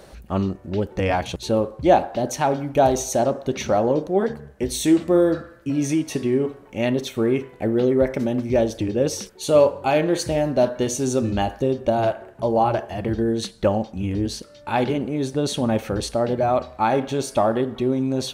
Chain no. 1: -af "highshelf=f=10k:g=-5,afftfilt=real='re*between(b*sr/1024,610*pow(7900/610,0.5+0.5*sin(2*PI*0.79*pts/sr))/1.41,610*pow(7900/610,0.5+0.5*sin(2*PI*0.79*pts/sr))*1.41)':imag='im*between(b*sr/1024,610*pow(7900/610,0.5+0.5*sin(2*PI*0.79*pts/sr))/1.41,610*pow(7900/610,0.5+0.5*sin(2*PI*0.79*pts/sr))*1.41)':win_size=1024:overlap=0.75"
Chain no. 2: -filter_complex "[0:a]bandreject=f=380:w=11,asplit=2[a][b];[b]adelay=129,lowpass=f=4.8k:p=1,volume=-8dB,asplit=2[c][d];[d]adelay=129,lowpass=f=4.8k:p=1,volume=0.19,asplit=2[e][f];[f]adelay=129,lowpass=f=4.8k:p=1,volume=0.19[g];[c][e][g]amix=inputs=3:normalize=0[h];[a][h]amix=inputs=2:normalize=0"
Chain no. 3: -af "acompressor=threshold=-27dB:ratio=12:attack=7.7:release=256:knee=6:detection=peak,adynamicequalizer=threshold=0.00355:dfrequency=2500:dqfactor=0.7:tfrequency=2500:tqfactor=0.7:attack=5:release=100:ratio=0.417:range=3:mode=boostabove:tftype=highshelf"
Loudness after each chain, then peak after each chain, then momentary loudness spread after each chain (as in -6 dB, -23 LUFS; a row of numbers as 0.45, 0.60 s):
-30.5, -22.0, -31.0 LUFS; -9.5, -4.5, -15.0 dBFS; 22, 7, 6 LU